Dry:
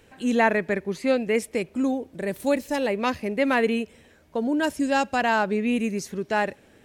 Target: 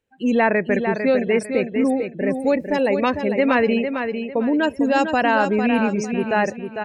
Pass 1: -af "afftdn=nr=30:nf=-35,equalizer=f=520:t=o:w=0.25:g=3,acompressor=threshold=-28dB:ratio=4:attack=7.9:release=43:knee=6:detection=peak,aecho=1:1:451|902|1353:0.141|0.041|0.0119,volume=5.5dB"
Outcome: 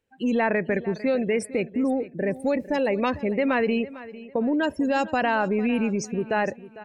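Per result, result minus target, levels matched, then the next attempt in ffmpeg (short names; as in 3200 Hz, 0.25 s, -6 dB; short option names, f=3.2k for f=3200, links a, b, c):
echo-to-direct -10 dB; compressor: peak gain reduction +6 dB
-af "afftdn=nr=30:nf=-35,equalizer=f=520:t=o:w=0.25:g=3,acompressor=threshold=-28dB:ratio=4:attack=7.9:release=43:knee=6:detection=peak,aecho=1:1:451|902|1353|1804:0.447|0.13|0.0376|0.0109,volume=5.5dB"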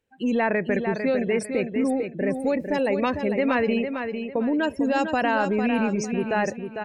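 compressor: peak gain reduction +6 dB
-af "afftdn=nr=30:nf=-35,equalizer=f=520:t=o:w=0.25:g=3,acompressor=threshold=-20dB:ratio=4:attack=7.9:release=43:knee=6:detection=peak,aecho=1:1:451|902|1353|1804:0.447|0.13|0.0376|0.0109,volume=5.5dB"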